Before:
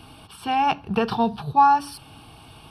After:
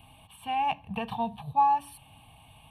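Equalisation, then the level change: treble shelf 8.7 kHz +4 dB; static phaser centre 1.4 kHz, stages 6; -6.5 dB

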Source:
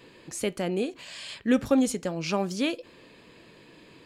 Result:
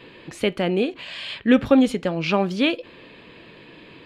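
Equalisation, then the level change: resonant high shelf 4.7 kHz -12 dB, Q 1.5; +6.5 dB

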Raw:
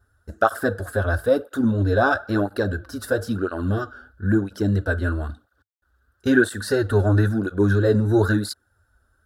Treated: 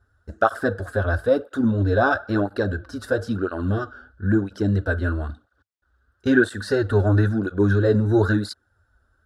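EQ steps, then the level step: distance through air 59 m; 0.0 dB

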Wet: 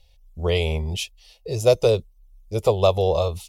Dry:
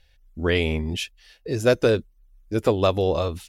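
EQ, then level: static phaser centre 670 Hz, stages 4; +4.0 dB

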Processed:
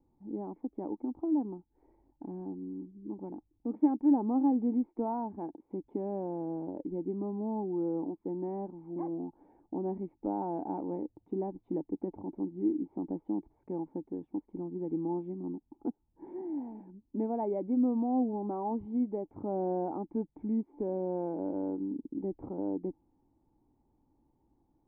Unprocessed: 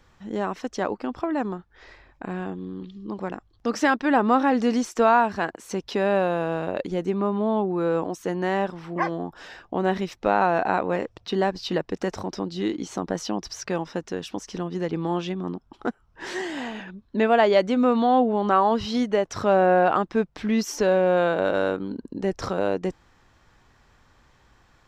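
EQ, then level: cascade formant filter u; 0.0 dB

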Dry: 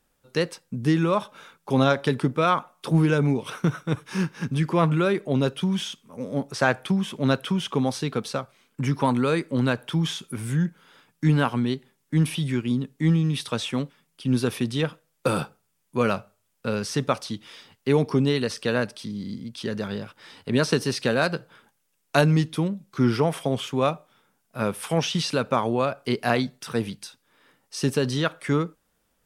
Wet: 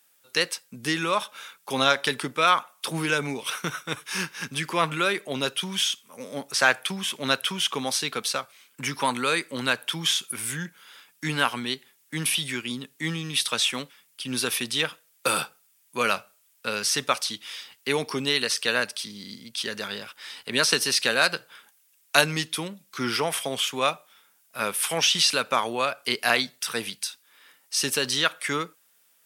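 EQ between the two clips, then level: high-pass 45 Hz; RIAA curve recording; peaking EQ 2.3 kHz +7 dB 2.3 oct; -3.0 dB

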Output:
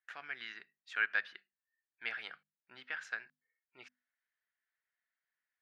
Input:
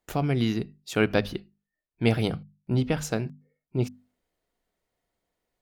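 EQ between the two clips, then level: ladder band-pass 1.8 kHz, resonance 70%; tilt EQ -2.5 dB/octave; treble shelf 2.3 kHz +9 dB; +1.0 dB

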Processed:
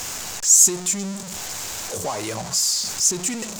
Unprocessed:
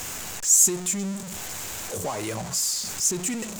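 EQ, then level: peaking EQ 850 Hz +3.5 dB 1.8 oct; peaking EQ 5.1 kHz +7 dB 1.2 oct; 0.0 dB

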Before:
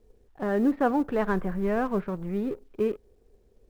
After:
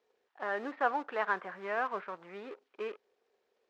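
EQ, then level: high-pass 990 Hz 12 dB/octave; distance through air 160 m; +3.0 dB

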